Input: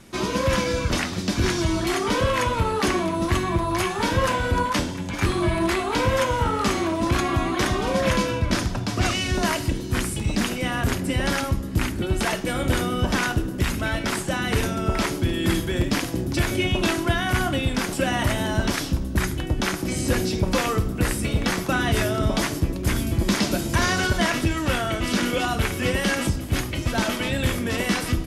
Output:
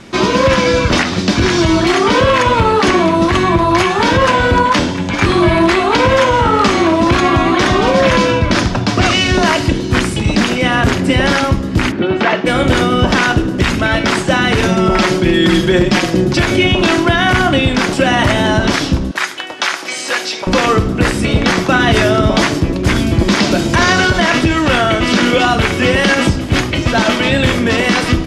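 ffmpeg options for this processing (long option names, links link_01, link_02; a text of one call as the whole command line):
ffmpeg -i in.wav -filter_complex "[0:a]asplit=3[link_01][link_02][link_03];[link_01]afade=type=out:start_time=11.91:duration=0.02[link_04];[link_02]highpass=170,lowpass=2900,afade=type=in:start_time=11.91:duration=0.02,afade=type=out:start_time=12.45:duration=0.02[link_05];[link_03]afade=type=in:start_time=12.45:duration=0.02[link_06];[link_04][link_05][link_06]amix=inputs=3:normalize=0,asettb=1/sr,asplit=3[link_07][link_08][link_09];[link_07]atrim=end=14.684[link_10];[link_08]atrim=start=14.68:end=16.38,asetpts=PTS-STARTPTS,afade=type=in:duration=0.004:curve=qsin,afade=type=out:start_time=1.696:duration=0.004:curve=qsin,aecho=1:1:5.5:0.67,atrim=end_sample=74970[link_11];[link_09]atrim=start=16.376[link_12];[link_10][link_11]acrossfade=duration=0.004:curve1=hsin:curve2=qsin[link_13];[link_13][link_12]acrossfade=duration=0.004:curve1=qsin:curve2=hsin,asettb=1/sr,asplit=3[link_14][link_15][link_16];[link_14]atrim=end=19.114[link_17];[link_15]atrim=start=19.11:end=20.47,asetpts=PTS-STARTPTS,afade=type=in:duration=0.004:curve=qsin,afade=type=out:start_time=1.356:duration=0.004:curve=qsin,highpass=860[link_18];[link_16]atrim=start=20.466[link_19];[link_17][link_18]acrossfade=duration=0.004:curve1=hsin:curve2=qsin[link_20];[link_20][link_19]acrossfade=duration=0.004:curve1=qsin:curve2=hsin,lowpass=5400,lowshelf=frequency=96:gain=-8.5,alimiter=level_in=14.5dB:limit=-1dB:release=50:level=0:latency=1,volume=-1dB" out.wav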